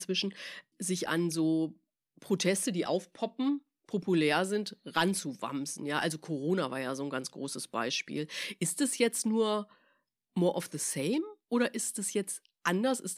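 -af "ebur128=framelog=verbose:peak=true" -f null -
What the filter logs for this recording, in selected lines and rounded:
Integrated loudness:
  I:         -32.1 LUFS
  Threshold: -42.3 LUFS
Loudness range:
  LRA:         2.1 LU
  Threshold: -52.4 LUFS
  LRA low:   -33.7 LUFS
  LRA high:  -31.6 LUFS
True peak:
  Peak:      -13.5 dBFS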